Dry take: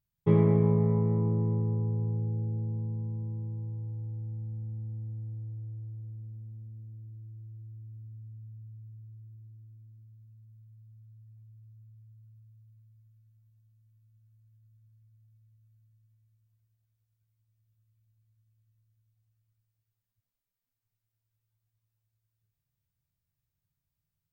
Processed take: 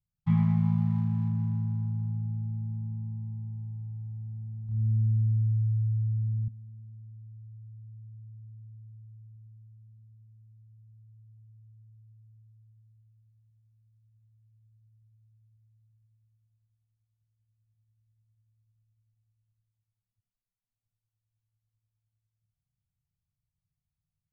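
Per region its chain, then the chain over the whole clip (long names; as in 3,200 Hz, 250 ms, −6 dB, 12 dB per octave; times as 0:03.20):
0:04.66–0:06.48: low-pass filter 2,000 Hz + upward compression, threshold −40 dBFS + flutter between parallel walls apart 4.7 metres, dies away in 0.98 s
whole clip: adaptive Wiener filter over 25 samples; Chebyshev band-stop filter 240–700 Hz, order 5; parametric band 980 Hz −4.5 dB 0.57 octaves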